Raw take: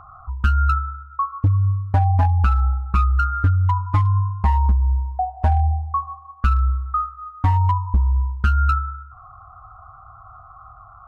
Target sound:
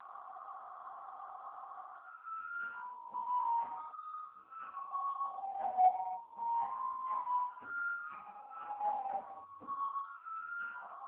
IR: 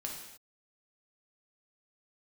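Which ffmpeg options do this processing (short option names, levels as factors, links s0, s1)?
-filter_complex "[0:a]areverse,equalizer=f=310:t=o:w=2.1:g=-11,alimiter=limit=0.112:level=0:latency=1:release=16,acompressor=threshold=0.0316:ratio=2,asplit=2[s0][s1];[s1]highpass=f=720:p=1,volume=3.55,asoftclip=type=tanh:threshold=0.0708[s2];[s0][s2]amix=inputs=2:normalize=0,lowpass=f=1500:p=1,volume=0.501,highpass=f=230:w=0.5412,highpass=f=230:w=1.3066,equalizer=f=230:t=q:w=4:g=5,equalizer=f=360:t=q:w=4:g=-6,equalizer=f=510:t=q:w=4:g=9,equalizer=f=760:t=q:w=4:g=6,equalizer=f=1300:t=q:w=4:g=-10,equalizer=f=1900:t=q:w=4:g=-7,lowpass=f=2600:w=0.5412,lowpass=f=2600:w=1.3066[s3];[1:a]atrim=start_sample=2205[s4];[s3][s4]afir=irnorm=-1:irlink=0,volume=1.12" -ar 8000 -c:a libopencore_amrnb -b:a 5150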